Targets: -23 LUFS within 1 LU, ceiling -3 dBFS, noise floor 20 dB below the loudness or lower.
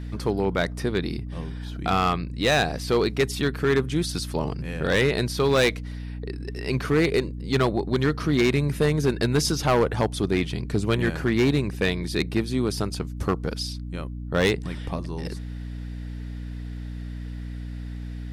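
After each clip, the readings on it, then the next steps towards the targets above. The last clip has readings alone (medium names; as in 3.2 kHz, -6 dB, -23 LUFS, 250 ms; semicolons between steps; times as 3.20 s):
clipped samples 1.1%; clipping level -14.5 dBFS; hum 60 Hz; highest harmonic 300 Hz; hum level -31 dBFS; loudness -24.5 LUFS; peak level -14.5 dBFS; loudness target -23.0 LUFS
-> clip repair -14.5 dBFS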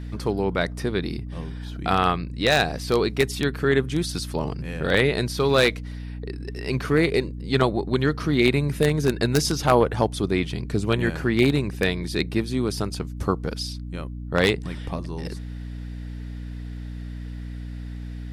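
clipped samples 0.0%; hum 60 Hz; highest harmonic 300 Hz; hum level -31 dBFS
-> hum notches 60/120/180/240/300 Hz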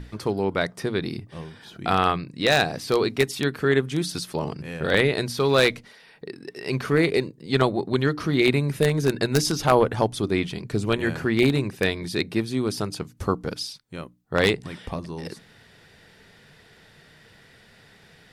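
hum not found; loudness -24.0 LUFS; peak level -5.0 dBFS; loudness target -23.0 LUFS
-> trim +1 dB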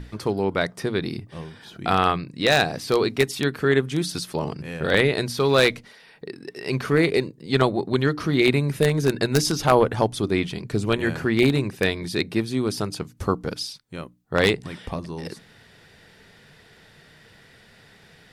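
loudness -23.0 LUFS; peak level -4.0 dBFS; noise floor -53 dBFS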